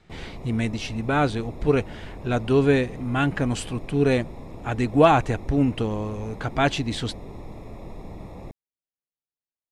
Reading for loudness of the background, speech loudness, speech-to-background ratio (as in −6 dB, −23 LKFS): −41.0 LKFS, −23.5 LKFS, 17.5 dB